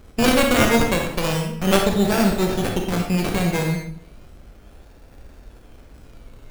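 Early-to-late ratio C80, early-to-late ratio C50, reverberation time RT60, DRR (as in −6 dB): 7.5 dB, 4.0 dB, 0.65 s, 1.5 dB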